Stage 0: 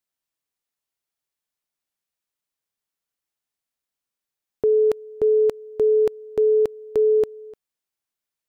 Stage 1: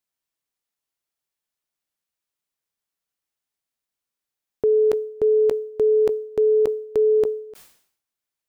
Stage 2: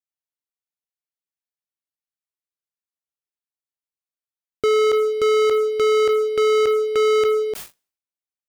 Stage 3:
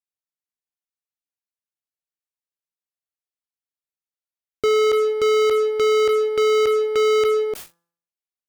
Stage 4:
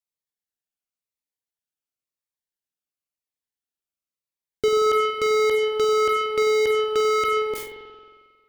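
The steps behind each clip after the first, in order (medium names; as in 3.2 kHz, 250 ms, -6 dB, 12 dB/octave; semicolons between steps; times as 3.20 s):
decay stretcher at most 95 dB/s
peaking EQ 74 Hz +3 dB 0.23 oct; waveshaping leveller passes 5; trim -3 dB
de-hum 169.7 Hz, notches 10; Chebyshev shaper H 2 -32 dB, 6 -36 dB, 7 -25 dB, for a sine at -15 dBFS
spring tank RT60 1.7 s, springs 45 ms, chirp 45 ms, DRR 3.5 dB; Shepard-style phaser falling 0.95 Hz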